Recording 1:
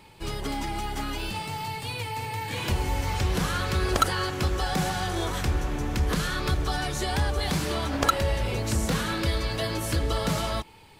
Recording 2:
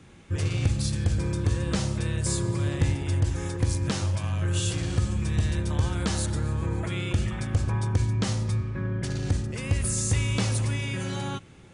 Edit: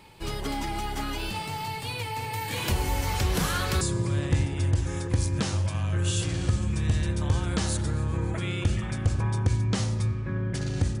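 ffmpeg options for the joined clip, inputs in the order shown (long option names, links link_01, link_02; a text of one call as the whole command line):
ffmpeg -i cue0.wav -i cue1.wav -filter_complex "[0:a]asettb=1/sr,asplit=3[link_01][link_02][link_03];[link_01]atrim=end=2.334[link_04];[link_02]atrim=start=2.33:end=3.81,asetpts=PTS-STARTPTS,afade=type=in:duration=0.004:curve=qsin,afade=type=out:start_time=1.476:duration=0.004:curve=qsin,highshelf=frequency=7500:gain=7.5[link_05];[link_03]atrim=start=3.806[link_06];[link_04][link_05]acrossfade=duration=0.004:curve1=hsin:curve2=qsin[link_07];[link_07][link_06]acrossfade=duration=0.004:curve1=qsin:curve2=hsin,apad=whole_dur=11,atrim=end=11,atrim=end=3.812[link_08];[1:a]atrim=start=2.298:end=9.49[link_09];[link_08][link_09]acrossfade=duration=0.004:curve1=hsin:curve2=hsin" out.wav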